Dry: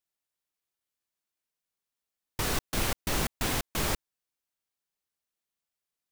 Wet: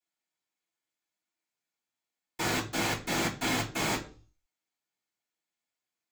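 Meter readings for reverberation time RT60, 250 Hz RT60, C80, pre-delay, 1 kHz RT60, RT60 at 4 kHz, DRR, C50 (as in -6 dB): 0.40 s, 0.45 s, 17.0 dB, 3 ms, 0.35 s, 0.40 s, -15.5 dB, 11.5 dB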